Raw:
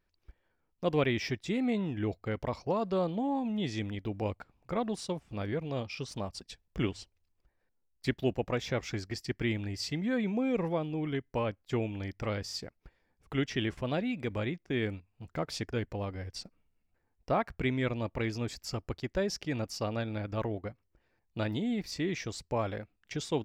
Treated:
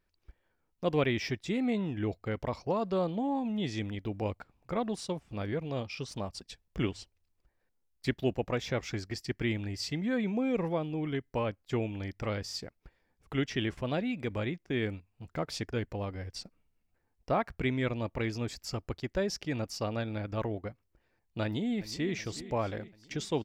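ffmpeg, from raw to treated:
-filter_complex "[0:a]asplit=2[a][b];[b]afade=t=in:st=21.44:d=0.01,afade=t=out:st=22.14:d=0.01,aecho=0:1:370|740|1110|1480|1850|2220:0.188365|0.113019|0.0678114|0.0406868|0.0244121|0.0146473[c];[a][c]amix=inputs=2:normalize=0"

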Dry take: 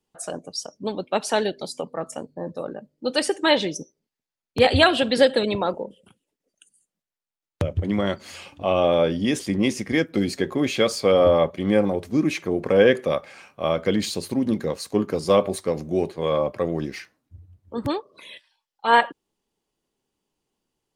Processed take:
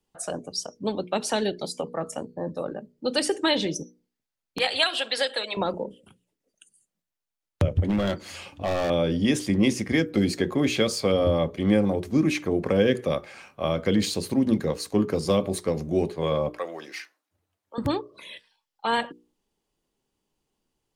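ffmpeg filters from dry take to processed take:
-filter_complex "[0:a]asettb=1/sr,asplit=3[a][b][c];[a]atrim=end=4.584[d];[b]atrim=start=4.58:end=5.57,asetpts=PTS-STARTPTS,afade=t=in:d=0.004:c=qsin,afade=t=out:st=0.986:d=0.004:c=qsin,highpass=850[e];[c]atrim=start=5.566[f];[d][e]acrossfade=d=0.004:c1=hsin:c2=qsin[g];[g][f]acrossfade=d=0.004:c1=qsin:c2=hsin,asettb=1/sr,asplit=3[h][i][j];[h]atrim=end=7.784[k];[i]atrim=start=7.78:end=8.9,asetpts=PTS-STARTPTS,afade=t=in:d=0.004:c=qsin,afade=t=out:st=1.116:d=0.004:c=qsin,volume=20dB,asoftclip=hard,volume=-20dB[l];[j]atrim=start=8.896[m];[k][l]acrossfade=d=0.004:c1=hsin:c2=qsin[n];[n][m]acrossfade=d=0.004:c1=qsin:c2=hsin,asettb=1/sr,asplit=3[o][p][q];[o]atrim=end=16.494[r];[p]atrim=start=16.49:end=17.78,asetpts=PTS-STARTPTS,afade=t=in:d=0.004:c=qsin,afade=t=out:st=1.286:d=0.004:c=qsin,highpass=730[s];[q]atrim=start=17.776[t];[r][s]acrossfade=d=0.004:c1=hsin:c2=qsin[u];[u][t]acrossfade=d=0.004:c1=qsin:c2=hsin,lowshelf=f=120:g=6,bandreject=f=60:t=h:w=6,bandreject=f=120:t=h:w=6,bandreject=f=180:t=h:w=6,bandreject=f=240:t=h:w=6,bandreject=f=300:t=h:w=6,bandreject=f=360:t=h:w=6,bandreject=f=420:t=h:w=6,bandreject=f=480:t=h:w=6,acrossover=split=350|3000[v][w][x];[w]acompressor=threshold=-24dB:ratio=6[y];[v][y][x]amix=inputs=3:normalize=0"

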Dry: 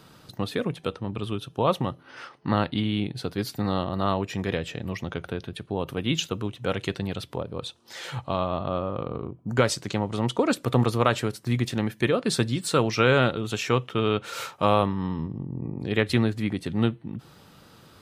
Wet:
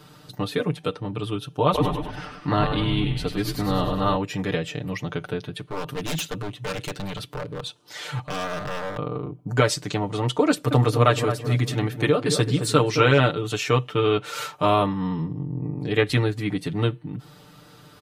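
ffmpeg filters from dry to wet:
-filter_complex "[0:a]asplit=3[a][b][c];[a]afade=t=out:st=1.73:d=0.02[d];[b]asplit=9[e][f][g][h][i][j][k][l][m];[f]adelay=99,afreqshift=-76,volume=-6dB[n];[g]adelay=198,afreqshift=-152,volume=-10.4dB[o];[h]adelay=297,afreqshift=-228,volume=-14.9dB[p];[i]adelay=396,afreqshift=-304,volume=-19.3dB[q];[j]adelay=495,afreqshift=-380,volume=-23.7dB[r];[k]adelay=594,afreqshift=-456,volume=-28.2dB[s];[l]adelay=693,afreqshift=-532,volume=-32.6dB[t];[m]adelay=792,afreqshift=-608,volume=-37.1dB[u];[e][n][o][p][q][r][s][t][u]amix=inputs=9:normalize=0,afade=t=in:st=1.73:d=0.02,afade=t=out:st=4.15:d=0.02[v];[c]afade=t=in:st=4.15:d=0.02[w];[d][v][w]amix=inputs=3:normalize=0,asettb=1/sr,asplit=3[x][y][z];[x]atrim=end=5.594[aa];[y]atrim=start=5.59:end=8.97,asetpts=PTS-STARTPTS,afade=t=in:d=0.004:c=qsin,afade=t=out:st=3.376:d=0.004:c=qsin,aeval=exprs='0.0562*(abs(mod(val(0)/0.0562+3,4)-2)-1)':c=same[ab];[z]atrim=start=8.966[ac];[aa][ab]acrossfade=d=0.004:c1=hsin:c2=qsin[ad];[ad][ac]acrossfade=d=0.004:c1=qsin:c2=hsin,asettb=1/sr,asplit=3[ae][af][ag];[ae]atrim=end=10.494[ah];[af]atrim=start=10.49:end=13.2,asetpts=PTS-STARTPTS,afade=t=in:d=0.004:c=qsin,afade=t=out:st=2.706:d=0.004:c=qsin,asplit=2[ai][aj];[aj]adelay=218,lowpass=f=1.1k:p=1,volume=-7dB,asplit=2[ak][al];[al]adelay=218,lowpass=f=1.1k:p=1,volume=0.41,asplit=2[am][an];[an]adelay=218,lowpass=f=1.1k:p=1,volume=0.41,asplit=2[ao][ap];[ap]adelay=218,lowpass=f=1.1k:p=1,volume=0.41,asplit=2[aq][ar];[ar]adelay=218,lowpass=f=1.1k:p=1,volume=0.41[as];[ai][ak][am][ao][aq][as]amix=inputs=6:normalize=0,atrim=end_sample=119511[at];[ag]atrim=start=13.196[au];[ah][at]acrossfade=d=0.004:c1=hsin:c2=qsin[av];[av][au]acrossfade=d=0.004:c1=qsin:c2=hsin,aecho=1:1:6.7:0.92"

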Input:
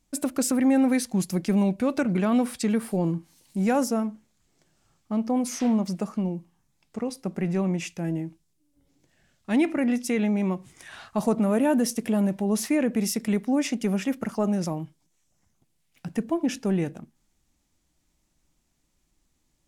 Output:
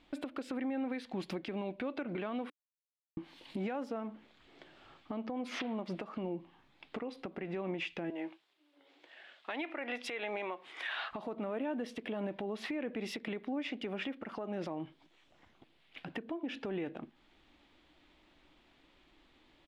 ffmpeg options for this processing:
-filter_complex "[0:a]asettb=1/sr,asplit=3[a][b][c];[a]atrim=end=8.104[d];[b]atrim=start=8.1:end=11.11,asetpts=PTS-STARTPTS,afade=t=in:d=0.004:c=qsin,afade=t=out:st=3.006:d=0.004:c=qsin,highpass=590[e];[c]atrim=start=11.106[f];[d][e]acrossfade=d=0.004:c1=hsin:c2=qsin[g];[g][f]acrossfade=d=0.004:c1=qsin:c2=hsin,asplit=3[h][i][j];[h]atrim=end=2.5,asetpts=PTS-STARTPTS,afade=t=out:st=2.496:d=0.004:c=hsin[k];[i]atrim=start=2.5:end=3.17,asetpts=PTS-STARTPTS,volume=0[l];[j]atrim=start=3.17,asetpts=PTS-STARTPTS,afade=t=in:d=0.004:c=hsin[m];[k][l][m]concat=n=3:v=0:a=1,firequalizer=gain_entry='entry(180,0);entry(290,12);entry(3400,15);entry(6000,-10);entry(11000,-16)':delay=0.05:min_phase=1,acompressor=threshold=-25dB:ratio=10,alimiter=level_in=4.5dB:limit=-24dB:level=0:latency=1:release=357,volume=-4.5dB"

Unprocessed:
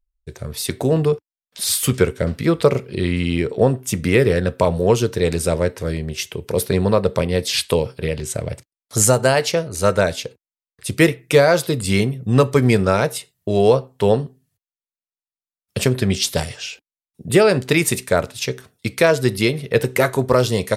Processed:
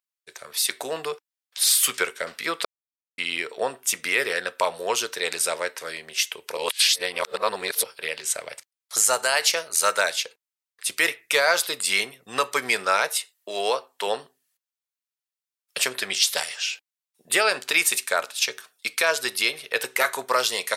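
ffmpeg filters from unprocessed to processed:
-filter_complex "[0:a]asettb=1/sr,asplit=3[a][b][c];[a]atrim=end=9.184[d];[b]atrim=start=9.18:end=10.1,asetpts=PTS-STARTPTS,afade=t=in:d=0.004:c=qsin,afade=t=out:st=0.916:d=0.004:c=qsin,highshelf=f=6.1k:g=6.5[e];[c]atrim=start=10.096[f];[d][e]acrossfade=d=0.004:c1=hsin:c2=qsin[g];[g][f]acrossfade=d=0.004:c1=qsin:c2=hsin,asettb=1/sr,asplit=3[h][i][j];[h]atrim=end=13.164[k];[i]atrim=start=13.16:end=14.07,asetpts=PTS-STARTPTS,afade=t=in:d=0.004:c=qsin,afade=t=out:st=0.906:d=0.004:c=qsin,highpass=190[l];[j]atrim=start=14.066[m];[k][l]acrossfade=d=0.004:c1=hsin:c2=qsin[n];[n][m]acrossfade=d=0.004:c1=qsin:c2=hsin,asettb=1/sr,asplit=3[o][p][q];[o]atrim=end=17.454[r];[p]atrim=start=17.45:end=19.91,asetpts=PTS-STARTPTS,afade=t=in:d=0.004:c=qsin,afade=t=out:st=2.456:d=0.004:c=qsin,bandreject=f=2k:w=12[s];[q]atrim=start=19.906[t];[r][s]acrossfade=d=0.004:c1=hsin:c2=qsin[u];[u][t]acrossfade=d=0.004:c1=qsin:c2=hsin,asplit=5[v][w][x][y][z];[v]atrim=end=2.65,asetpts=PTS-STARTPTS,afade=t=out:st=2.646:d=0.004:c=hsin[aa];[w]atrim=start=2.65:end=3.18,asetpts=PTS-STARTPTS,volume=0[ab];[x]atrim=start=3.18:end=6.572,asetpts=PTS-STARTPTS,afade=t=in:d=0.004:c=hsin[ac];[y]atrim=start=6.568:end=7.842,asetpts=PTS-STARTPTS,areverse[ad];[z]atrim=start=7.838[ae];[aa][ab][ac]concat=n=3:v=0:a=1[af];[af][ad]acrossfade=d=0.004:c1=hsin:c2=hsin[ag];[ag][ae]acrossfade=d=0.004:c1=hsin:c2=hsin,highpass=1.1k,alimiter=level_in=10dB:limit=-1dB:release=50:level=0:latency=1,volume=-7dB"

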